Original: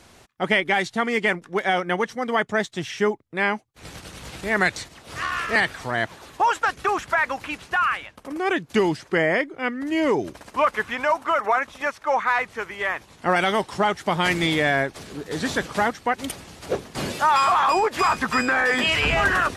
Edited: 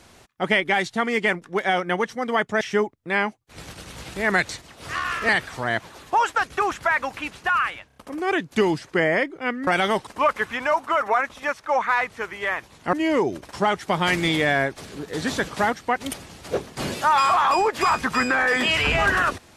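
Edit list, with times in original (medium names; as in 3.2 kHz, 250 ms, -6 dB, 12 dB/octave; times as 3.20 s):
2.61–2.88 s: delete
8.14 s: stutter 0.03 s, 4 plays
9.85–10.45 s: swap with 13.31–13.71 s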